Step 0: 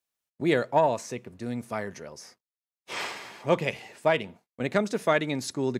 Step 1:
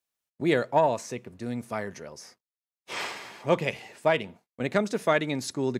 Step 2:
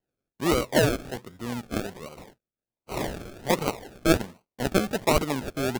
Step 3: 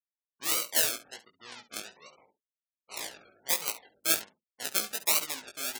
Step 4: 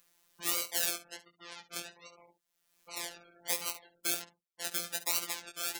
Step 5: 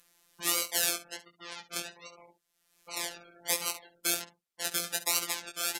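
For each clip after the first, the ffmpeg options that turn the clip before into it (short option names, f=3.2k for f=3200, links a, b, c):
-af anull
-af "equalizer=f=1.9k:w=0.94:g=5,acrusher=samples=36:mix=1:aa=0.000001:lfo=1:lforange=21.6:lforate=1.3"
-af "afftfilt=real='re*gte(hypot(re,im),0.00794)':imag='im*gte(hypot(re,im),0.00794)':win_size=1024:overlap=0.75,aderivative,aecho=1:1:19|69:0.668|0.188,volume=4.5dB"
-af "acompressor=mode=upward:threshold=-45dB:ratio=2.5,alimiter=limit=-9dB:level=0:latency=1:release=108,afftfilt=real='hypot(re,im)*cos(PI*b)':imag='0':win_size=1024:overlap=0.75,volume=2dB"
-af "aresample=32000,aresample=44100,volume=4.5dB"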